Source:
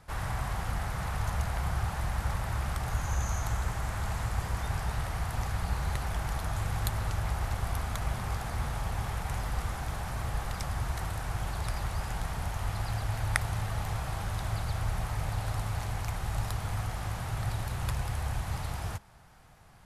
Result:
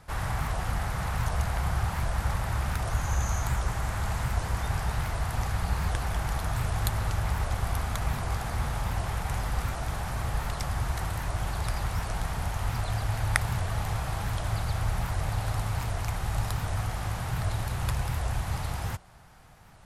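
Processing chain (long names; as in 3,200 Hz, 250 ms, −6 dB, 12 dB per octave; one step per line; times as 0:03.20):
wow of a warped record 78 rpm, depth 250 cents
level +3 dB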